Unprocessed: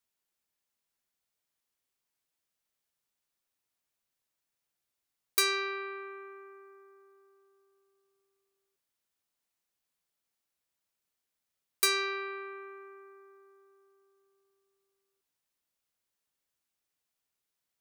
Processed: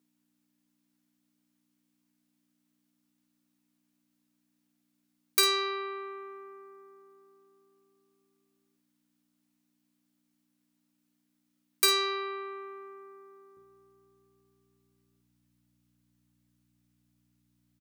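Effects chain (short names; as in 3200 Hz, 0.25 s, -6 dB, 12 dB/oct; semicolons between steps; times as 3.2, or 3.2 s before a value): hum 60 Hz, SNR 26 dB; HPF 210 Hz 24 dB/oct, from 13.57 s 100 Hz; early reflections 13 ms -9 dB, 52 ms -10 dB; gain +2 dB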